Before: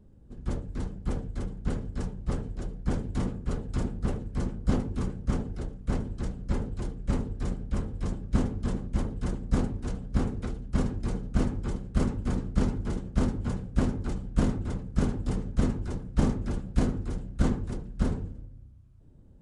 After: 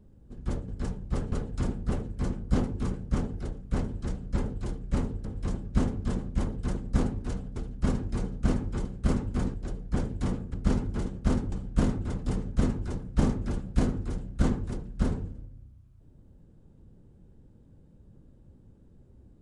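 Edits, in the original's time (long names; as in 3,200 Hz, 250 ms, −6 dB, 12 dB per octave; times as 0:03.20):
0:00.68–0:01.84: remove
0:02.48–0:03.48: move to 0:12.45
0:07.41–0:07.83: remove
0:10.14–0:10.47: remove
0:13.43–0:14.12: remove
0:14.84–0:15.24: remove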